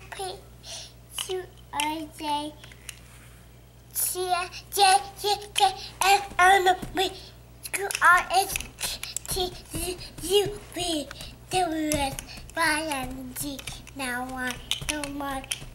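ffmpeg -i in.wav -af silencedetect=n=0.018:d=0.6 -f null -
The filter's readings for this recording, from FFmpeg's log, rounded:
silence_start: 2.98
silence_end: 3.91 | silence_duration: 0.93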